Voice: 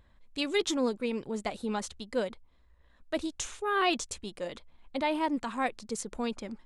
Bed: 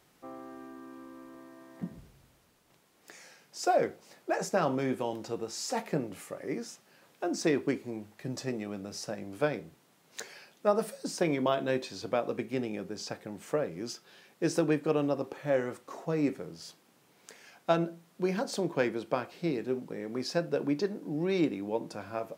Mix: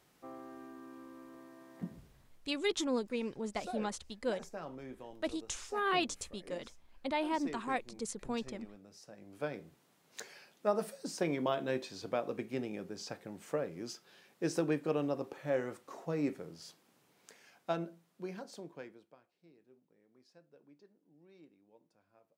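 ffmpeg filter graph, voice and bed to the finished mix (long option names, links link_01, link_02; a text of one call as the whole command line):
ffmpeg -i stem1.wav -i stem2.wav -filter_complex "[0:a]adelay=2100,volume=-4.5dB[link_01];[1:a]volume=8dB,afade=type=out:start_time=1.89:duration=0.85:silence=0.223872,afade=type=in:start_time=9.11:duration=0.71:silence=0.266073,afade=type=out:start_time=16.92:duration=2.24:silence=0.0446684[link_02];[link_01][link_02]amix=inputs=2:normalize=0" out.wav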